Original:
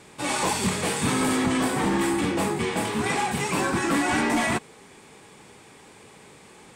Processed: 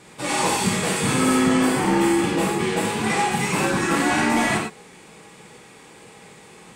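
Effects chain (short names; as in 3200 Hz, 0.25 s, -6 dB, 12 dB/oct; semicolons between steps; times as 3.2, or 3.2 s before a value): 1.15–2.29 notch 3800 Hz, Q 13; non-linear reverb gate 0.13 s flat, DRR -1.5 dB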